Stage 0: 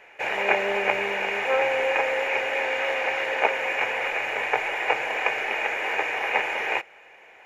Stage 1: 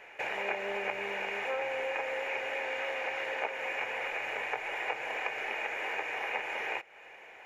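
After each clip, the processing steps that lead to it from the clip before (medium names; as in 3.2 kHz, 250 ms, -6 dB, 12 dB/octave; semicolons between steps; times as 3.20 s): compression 2.5:1, threshold -35 dBFS, peak gain reduction 13.5 dB; trim -1 dB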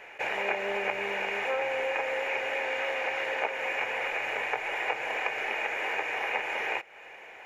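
attacks held to a fixed rise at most 480 dB/s; trim +4 dB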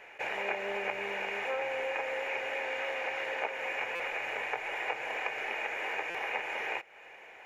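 buffer glitch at 3.95/6.10 s, samples 256, times 7; trim -4 dB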